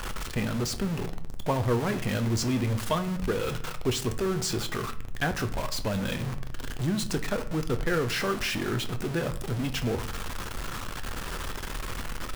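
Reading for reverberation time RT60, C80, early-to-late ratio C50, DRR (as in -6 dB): 0.60 s, 18.0 dB, 14.0 dB, 8.0 dB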